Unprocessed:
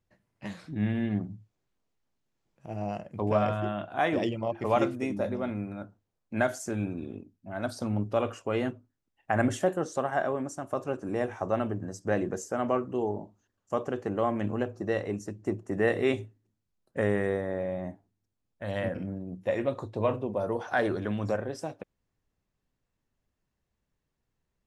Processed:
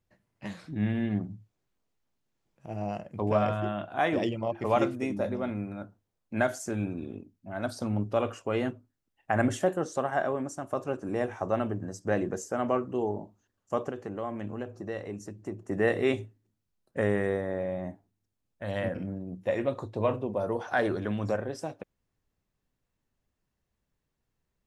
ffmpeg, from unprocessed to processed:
-filter_complex "[0:a]asettb=1/sr,asplit=3[a][b][c];[a]atrim=end=13.904[d];[b]atrim=start=13.9:end=15.6,asetpts=PTS-STARTPTS,afade=t=in:d=0.004:c=qsin,afade=t=out:st=1.696:d=0.004:c=qsin,acompressor=threshold=-42dB:ratio=1.5:attack=3.2:release=140:knee=1:detection=peak[e];[c]atrim=start=15.596[f];[d][e]acrossfade=d=0.004:c1=hsin:c2=qsin[g];[g][f]acrossfade=d=0.004:c1=qsin:c2=hsin"

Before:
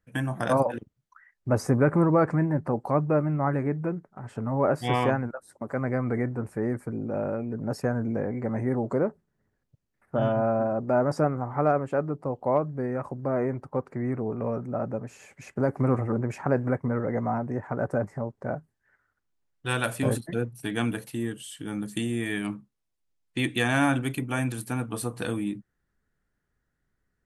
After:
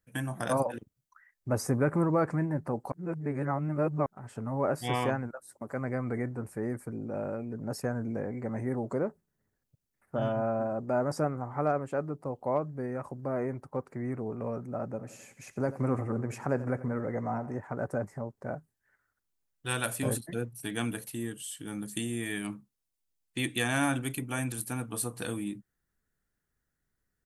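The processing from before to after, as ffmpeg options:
-filter_complex "[0:a]asplit=3[a][b][c];[a]afade=t=out:st=14.95:d=0.02[d];[b]aecho=1:1:88|176|264|352|440:0.158|0.0888|0.0497|0.0278|0.0156,afade=t=in:st=14.95:d=0.02,afade=t=out:st=17.56:d=0.02[e];[c]afade=t=in:st=17.56:d=0.02[f];[d][e][f]amix=inputs=3:normalize=0,asplit=3[g][h][i];[g]atrim=end=2.922[j];[h]atrim=start=2.918:end=4.062,asetpts=PTS-STARTPTS,areverse[k];[i]atrim=start=4.058[l];[j][k]acrossfade=d=0.004:c1=hsin:c2=hsin[m];[m][l]acrossfade=d=0.004:c1=hsin:c2=hsin,highshelf=f=5.9k:g=12,volume=-5.5dB"

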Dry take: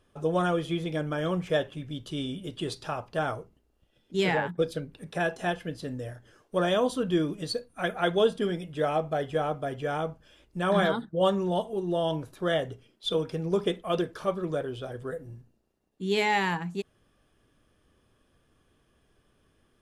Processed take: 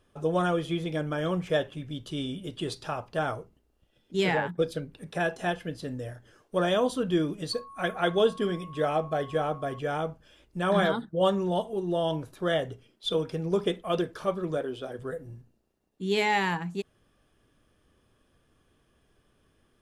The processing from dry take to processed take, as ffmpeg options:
-filter_complex "[0:a]asettb=1/sr,asplit=3[a][b][c];[a]atrim=end=7.534[d];[b]atrim=start=7.53:end=9.79,asetpts=PTS-STARTPTS,afade=t=in:d=0.004:c=qsin,afade=t=out:st=2.256:d=0.004:c=qsin,aeval=exprs='val(0)+0.00631*sin(2*PI*1100*n/s)':c=same[e];[c]atrim=start=9.786[f];[d][e]acrossfade=d=0.004:c1=hsin:c2=qsin[g];[g][f]acrossfade=d=0.004:c1=qsin:c2=hsin,asettb=1/sr,asplit=3[h][i][j];[h]atrim=end=14.574[k];[i]atrim=start=14.57:end=14.99,asetpts=PTS-STARTPTS,afade=t=in:d=0.004:c=qsin,afade=t=out:st=0.416:d=0.004:c=qsin,lowshelf=f=180:t=q:w=1.5:g=-6.5[l];[j]atrim=start=14.986[m];[k][l]acrossfade=d=0.004:c1=hsin:c2=qsin[n];[n][m]acrossfade=d=0.004:c1=qsin:c2=hsin"

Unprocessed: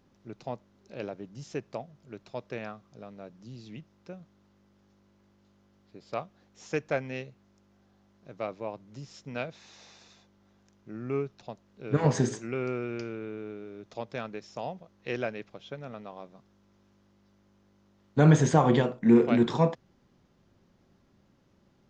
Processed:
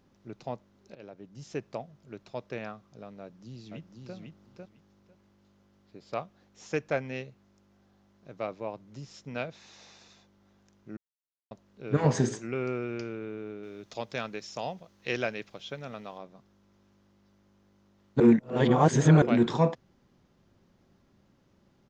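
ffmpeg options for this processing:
-filter_complex "[0:a]asplit=2[a][b];[b]afade=t=in:st=3.21:d=0.01,afade=t=out:st=4.15:d=0.01,aecho=0:1:500|1000|1500:0.668344|0.100252|0.0150377[c];[a][c]amix=inputs=2:normalize=0,asettb=1/sr,asplit=3[d][e][f];[d]atrim=end=13.634[g];[e]atrim=start=13.63:end=16.18,asetpts=PTS-STARTPTS,afade=t=in:d=0.004:c=qsin,afade=t=out:st=2.546:d=0.004:c=qsin,highshelf=f=2.2k:g=9.5[h];[f]atrim=start=16.176[i];[g][h]acrossfade=d=0.004:c1=hsin:c2=qsin[j];[j][i]acrossfade=d=0.004:c1=qsin:c2=hsin,asplit=6[k][l][m][n][o][p];[k]atrim=end=0.95,asetpts=PTS-STARTPTS,afade=t=out:st=0.946:d=0.004:c=hsin:silence=0.16788[q];[l]atrim=start=0.95:end=10.97,asetpts=PTS-STARTPTS,afade=t=in:d=0.63:silence=0.16788,afade=t=out:st=10.016:d=0.004:c=hsin[r];[m]atrim=start=10.97:end=11.51,asetpts=PTS-STARTPTS,volume=0[s];[n]atrim=start=11.51:end=18.202,asetpts=PTS-STARTPTS,afade=t=in:d=0.004:c=hsin[t];[o]atrim=start=18.198:end=19.222,asetpts=PTS-STARTPTS,areverse[u];[p]atrim=start=19.218[v];[q][r][s][t]concat=n=4:v=0:a=1[w];[w][u]acrossfade=d=0.004:c1=hsin:c2=hsin[x];[x][v]acrossfade=d=0.004:c1=hsin:c2=hsin"

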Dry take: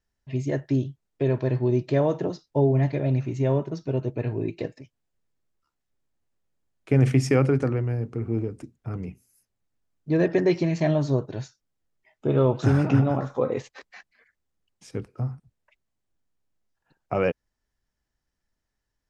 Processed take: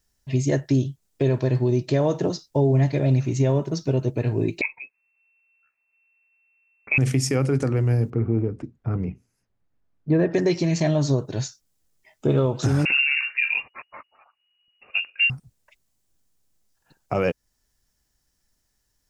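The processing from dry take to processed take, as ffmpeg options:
-filter_complex "[0:a]asettb=1/sr,asplit=3[a][b][c];[a]atrim=end=4.614[d];[b]atrim=start=4.61:end=6.98,asetpts=PTS-STARTPTS,afade=t=in:d=0.004:c=qsin,afade=t=out:st=2.366:d=0.004:c=qsin,lowpass=f=2.3k:t=q:w=0.5098,lowpass=f=2.3k:t=q:w=0.6013,lowpass=f=2.3k:t=q:w=0.9,lowpass=f=2.3k:t=q:w=2.563,afreqshift=-2700[e];[c]atrim=start=6.976[f];[d][e]acrossfade=d=0.004:c1=hsin:c2=qsin[g];[g][f]acrossfade=d=0.004:c1=qsin:c2=hsin,asettb=1/sr,asplit=3[h][i][j];[h]atrim=end=8.104[k];[i]atrim=start=8.1:end=10.34,asetpts=PTS-STARTPTS,afade=t=in:d=0.004:c=qsin,afade=t=out:st=2.236:d=0.004:c=qsin,lowpass=1.9k[l];[j]atrim=start=10.336[m];[k][l]acrossfade=d=0.004:c1=hsin:c2=qsin[n];[n][m]acrossfade=d=0.004:c1=qsin:c2=hsin,asettb=1/sr,asplit=3[o][p][q];[o]atrim=end=12.854[r];[p]atrim=start=12.85:end=15.3,asetpts=PTS-STARTPTS,afade=t=in:d=0.004:c=qsin,afade=t=out:st=2.446:d=0.004:c=qsin,lowpass=f=2.5k:t=q:w=0.5098,lowpass=f=2.5k:t=q:w=0.6013,lowpass=f=2.5k:t=q:w=0.9,lowpass=f=2.5k:t=q:w=2.563,afreqshift=-2900[s];[q]atrim=start=15.296[t];[r][s]acrossfade=d=0.004:c1=hsin:c2=qsin[u];[u][t]acrossfade=d=0.004:c1=qsin:c2=hsin,bass=f=250:g=2,treble=f=4k:g=12,alimiter=limit=-17dB:level=0:latency=1:release=269,volume=5dB"

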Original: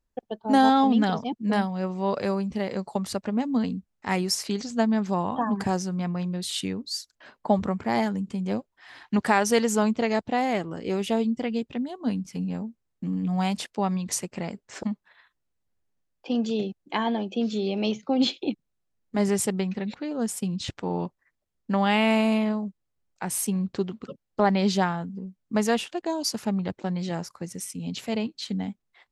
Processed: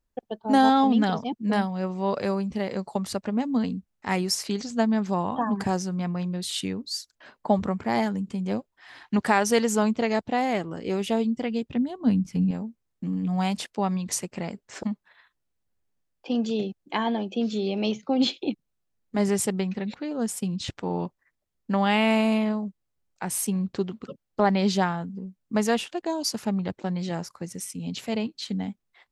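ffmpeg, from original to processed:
-filter_complex "[0:a]asettb=1/sr,asplit=3[a][b][c];[a]atrim=end=11.694[d];[b]atrim=start=11.69:end=12.51,asetpts=PTS-STARTPTS,afade=t=in:d=0.004:c=qsin,afade=t=out:st=0.816:d=0.004:c=qsin,bass=f=250:g=9,treble=f=4k:g=-3[e];[c]atrim=start=12.506[f];[d][e]acrossfade=d=0.004:c1=hsin:c2=qsin[g];[g][f]acrossfade=d=0.004:c1=qsin:c2=hsin"

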